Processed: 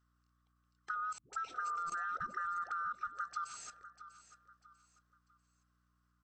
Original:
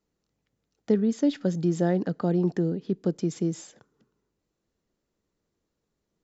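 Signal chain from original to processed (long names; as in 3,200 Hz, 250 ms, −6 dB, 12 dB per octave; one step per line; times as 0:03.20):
neighbouring bands swapped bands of 1,000 Hz
0:01.18–0:03.54: all-pass dispersion highs, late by 149 ms, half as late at 380 Hz
output level in coarse steps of 17 dB
0:01.51–0:01.94: healed spectral selection 370–790 Hz before
downward compressor, threshold −37 dBFS, peak gain reduction 6.5 dB
mains hum 60 Hz, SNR 33 dB
repeating echo 644 ms, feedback 35%, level −14.5 dB
level +1 dB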